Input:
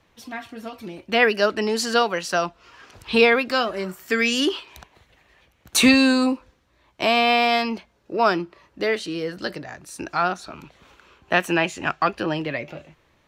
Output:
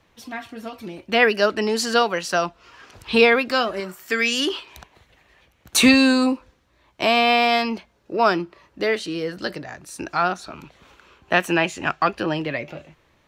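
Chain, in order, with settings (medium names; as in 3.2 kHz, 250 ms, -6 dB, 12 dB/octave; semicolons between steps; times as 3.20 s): 3.80–4.50 s: bass shelf 410 Hz -6.5 dB; trim +1 dB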